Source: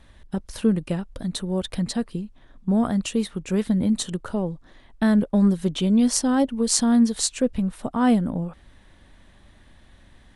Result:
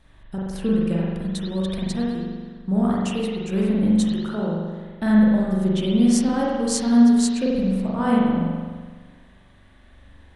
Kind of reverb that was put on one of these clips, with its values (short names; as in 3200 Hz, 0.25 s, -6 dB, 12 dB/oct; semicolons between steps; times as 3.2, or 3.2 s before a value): spring tank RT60 1.5 s, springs 42 ms, chirp 70 ms, DRR -5.5 dB; gain -5 dB